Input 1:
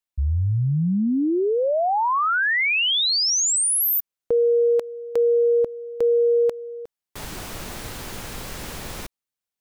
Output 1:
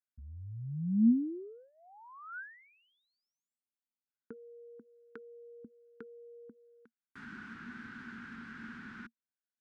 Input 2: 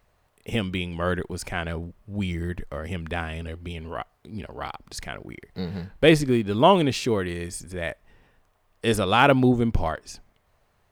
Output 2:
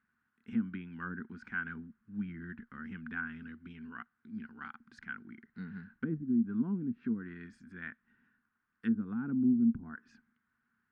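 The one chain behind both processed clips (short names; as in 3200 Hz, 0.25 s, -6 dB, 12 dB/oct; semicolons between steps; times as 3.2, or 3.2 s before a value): treble ducked by the level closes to 360 Hz, closed at -18 dBFS; double band-pass 590 Hz, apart 2.7 oct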